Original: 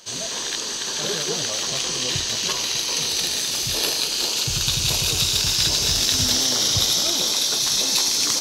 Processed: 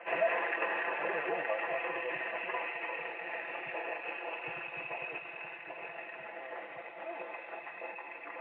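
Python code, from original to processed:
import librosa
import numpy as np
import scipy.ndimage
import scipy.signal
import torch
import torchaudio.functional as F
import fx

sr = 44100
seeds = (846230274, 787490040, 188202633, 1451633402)

y = scipy.signal.sosfilt(scipy.signal.butter(2, 500.0, 'highpass', fs=sr, output='sos'), x)
y = y + 0.84 * np.pad(y, (int(5.9 * sr / 1000.0), 0))[:len(y)]
y = fx.over_compress(y, sr, threshold_db=-28.0, ratio=-1.0)
y = scipy.signal.sosfilt(scipy.signal.cheby1(6, 9, 2700.0, 'lowpass', fs=sr, output='sos'), y)
y = y * 10.0 ** (4.0 / 20.0)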